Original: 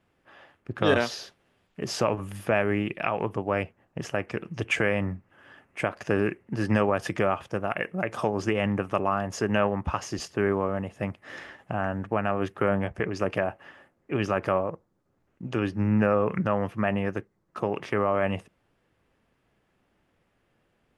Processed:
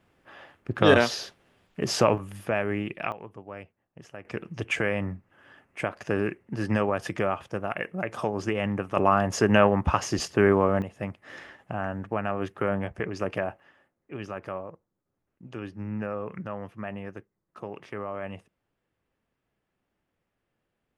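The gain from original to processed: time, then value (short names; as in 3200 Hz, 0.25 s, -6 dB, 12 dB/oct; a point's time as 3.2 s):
+4 dB
from 2.18 s -3 dB
from 3.12 s -14 dB
from 4.25 s -2 dB
from 8.97 s +5 dB
from 10.82 s -2.5 dB
from 13.6 s -10 dB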